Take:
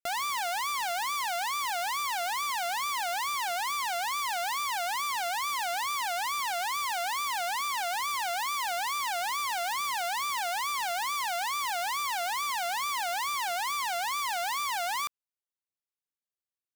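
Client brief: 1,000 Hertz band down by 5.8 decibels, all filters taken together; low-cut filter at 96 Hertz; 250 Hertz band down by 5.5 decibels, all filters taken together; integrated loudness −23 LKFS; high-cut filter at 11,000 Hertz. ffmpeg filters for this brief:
ffmpeg -i in.wav -af "highpass=96,lowpass=11000,equalizer=frequency=250:width_type=o:gain=-7,equalizer=frequency=1000:width_type=o:gain=-7,volume=10dB" out.wav

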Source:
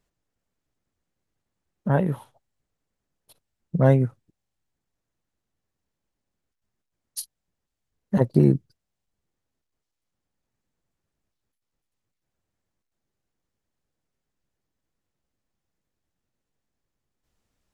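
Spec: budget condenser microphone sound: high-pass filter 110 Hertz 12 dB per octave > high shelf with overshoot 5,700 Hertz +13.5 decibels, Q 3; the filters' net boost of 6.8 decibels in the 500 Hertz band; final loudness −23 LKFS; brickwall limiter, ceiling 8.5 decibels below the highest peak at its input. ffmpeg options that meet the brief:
ffmpeg -i in.wav -af "equalizer=frequency=500:width_type=o:gain=8.5,alimiter=limit=-9.5dB:level=0:latency=1,highpass=110,highshelf=frequency=5700:width_type=q:width=3:gain=13.5" out.wav

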